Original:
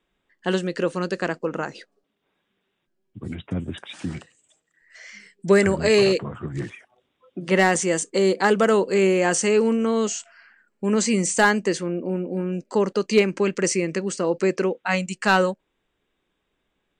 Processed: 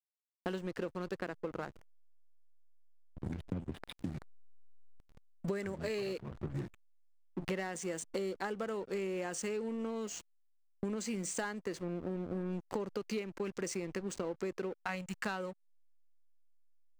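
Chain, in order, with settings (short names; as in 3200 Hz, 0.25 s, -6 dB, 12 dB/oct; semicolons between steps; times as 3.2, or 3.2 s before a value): backlash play -27.5 dBFS; compressor 16:1, threshold -32 dBFS, peak gain reduction 21 dB; gain -2 dB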